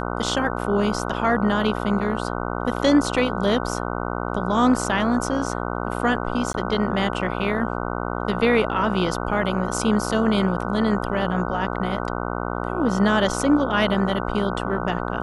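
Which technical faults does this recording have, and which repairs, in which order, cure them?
buzz 60 Hz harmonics 25 -27 dBFS
6.53–6.54 gap 12 ms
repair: de-hum 60 Hz, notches 25; interpolate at 6.53, 12 ms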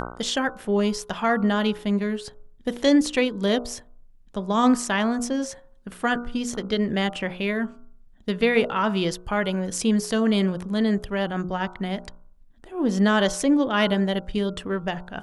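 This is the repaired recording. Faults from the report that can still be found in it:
none

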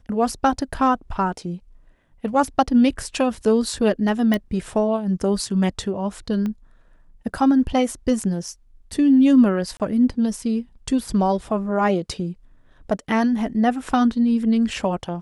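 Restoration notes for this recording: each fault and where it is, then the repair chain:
4.34 pop -10 dBFS
6.46 pop -17 dBFS
9.77–9.8 gap 28 ms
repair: de-click; interpolate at 9.77, 28 ms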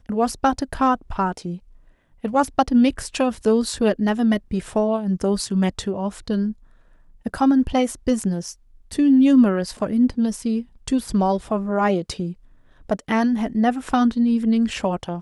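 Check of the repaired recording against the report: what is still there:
6.46 pop

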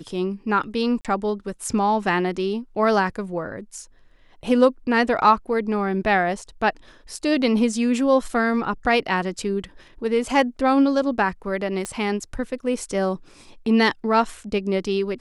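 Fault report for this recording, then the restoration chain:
1.01–1.05 gap 37 ms
11.85 pop -15 dBFS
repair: de-click; interpolate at 1.01, 37 ms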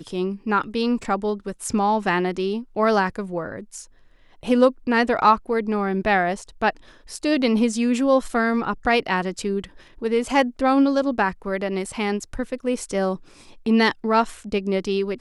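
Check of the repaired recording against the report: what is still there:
11.85 pop

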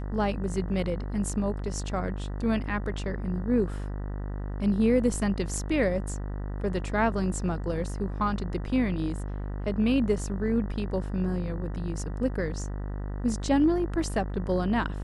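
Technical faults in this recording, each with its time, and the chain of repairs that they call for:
buzz 50 Hz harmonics 39 -33 dBFS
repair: de-hum 50 Hz, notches 39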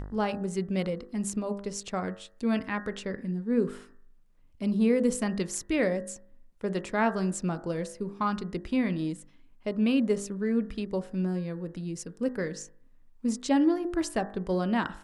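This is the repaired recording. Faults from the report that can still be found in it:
none

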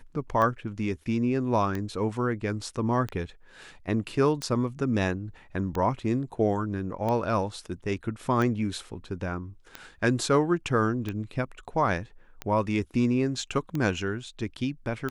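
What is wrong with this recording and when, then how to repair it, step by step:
tick 45 rpm -18 dBFS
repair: de-click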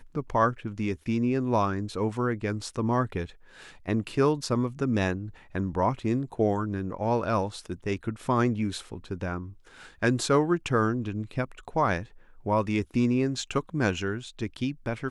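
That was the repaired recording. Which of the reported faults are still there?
none

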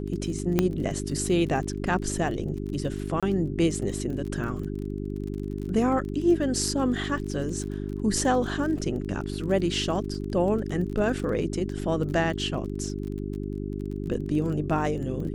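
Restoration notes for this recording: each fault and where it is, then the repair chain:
crackle 27/s -34 dBFS
hum 50 Hz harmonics 8 -32 dBFS
0.59 pop -8 dBFS
3.2–3.23 gap 26 ms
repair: de-click; de-hum 50 Hz, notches 8; interpolate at 3.2, 26 ms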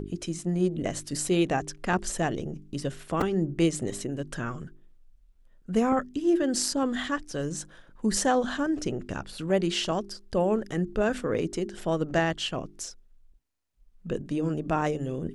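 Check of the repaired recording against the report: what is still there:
none

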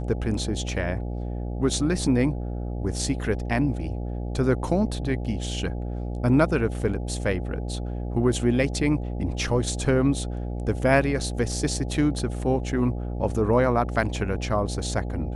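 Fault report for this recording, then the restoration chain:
buzz 60 Hz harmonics 14 -30 dBFS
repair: de-hum 60 Hz, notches 14

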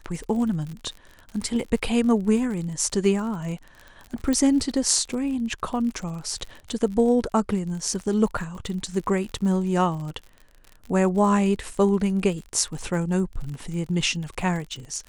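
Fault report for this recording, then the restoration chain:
crackle 46/s -32 dBFS
4.33 pop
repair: de-click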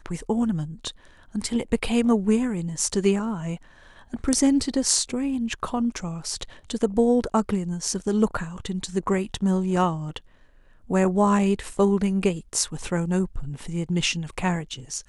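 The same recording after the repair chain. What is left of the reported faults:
4.33 pop

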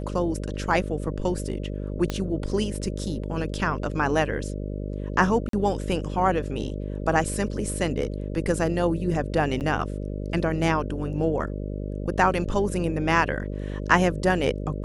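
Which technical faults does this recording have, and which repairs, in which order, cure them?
buzz 50 Hz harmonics 12 -31 dBFS
2.1 pop -13 dBFS
5.49–5.53 gap 43 ms
9.6–9.61 gap 8.6 ms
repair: de-click; de-hum 50 Hz, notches 12; interpolate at 5.49, 43 ms; interpolate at 9.6, 8.6 ms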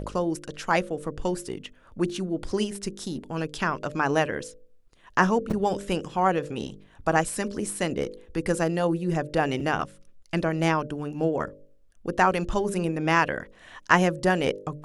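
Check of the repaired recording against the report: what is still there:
2.1 pop

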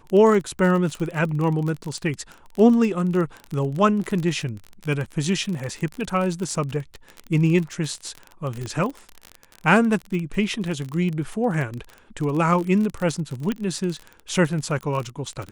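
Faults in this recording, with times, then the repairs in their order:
crackle 30/s -26 dBFS
8.66 pop -19 dBFS
13.52 pop -13 dBFS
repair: de-click

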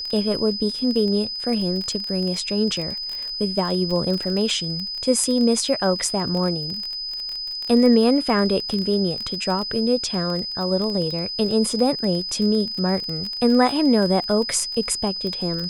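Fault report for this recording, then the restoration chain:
crackle 22/s -25 dBFS
tone 5000 Hz -27 dBFS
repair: de-click; notch 5000 Hz, Q 30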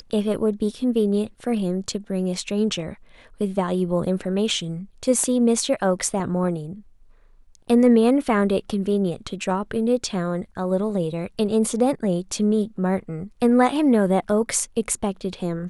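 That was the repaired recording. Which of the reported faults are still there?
none

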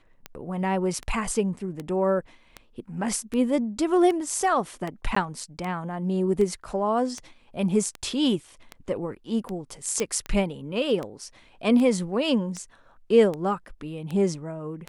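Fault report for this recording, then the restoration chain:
tick 78 rpm -19 dBFS
5.15–5.16 gap 14 ms
10 pop -13 dBFS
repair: de-click; interpolate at 5.15, 14 ms

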